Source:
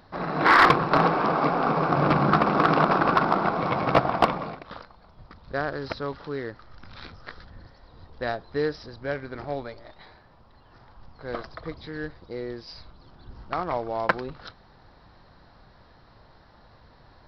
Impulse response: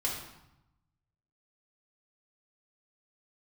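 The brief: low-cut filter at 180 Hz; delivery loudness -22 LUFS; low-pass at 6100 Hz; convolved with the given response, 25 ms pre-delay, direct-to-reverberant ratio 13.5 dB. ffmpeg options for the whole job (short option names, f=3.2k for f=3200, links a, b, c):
-filter_complex "[0:a]highpass=180,lowpass=6.1k,asplit=2[a][b];[1:a]atrim=start_sample=2205,adelay=25[c];[b][c]afir=irnorm=-1:irlink=0,volume=-18.5dB[d];[a][d]amix=inputs=2:normalize=0,volume=2.5dB"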